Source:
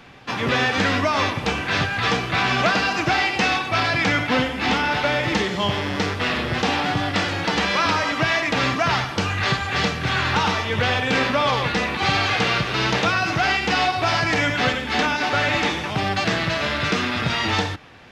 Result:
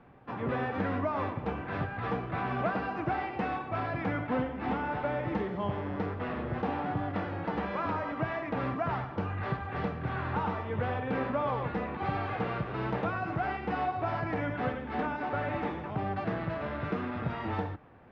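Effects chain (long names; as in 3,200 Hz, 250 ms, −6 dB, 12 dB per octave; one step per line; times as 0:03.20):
low-pass filter 1,100 Hz 12 dB per octave
reversed playback
upward compression, threshold −43 dBFS
reversed playback
level −8.5 dB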